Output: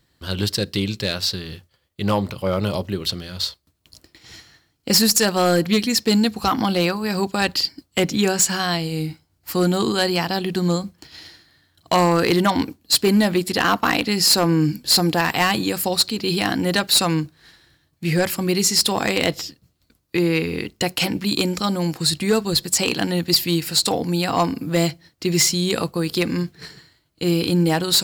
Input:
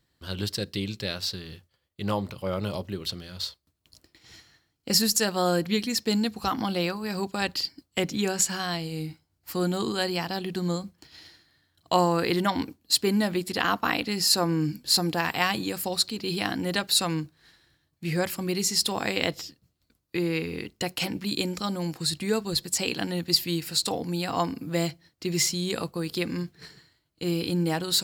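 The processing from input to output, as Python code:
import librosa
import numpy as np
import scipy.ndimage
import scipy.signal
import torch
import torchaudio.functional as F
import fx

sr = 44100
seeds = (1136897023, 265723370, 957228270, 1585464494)

y = np.clip(x, -10.0 ** (-18.5 / 20.0), 10.0 ** (-18.5 / 20.0))
y = y * 10.0 ** (8.0 / 20.0)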